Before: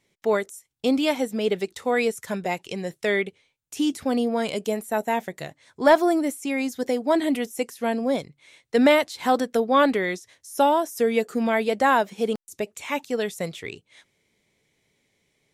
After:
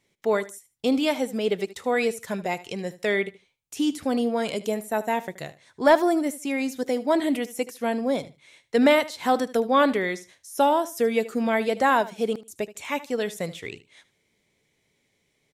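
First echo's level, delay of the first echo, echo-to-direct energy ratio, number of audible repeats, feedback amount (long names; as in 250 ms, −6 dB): −17.0 dB, 76 ms, −17.0 dB, 2, 19%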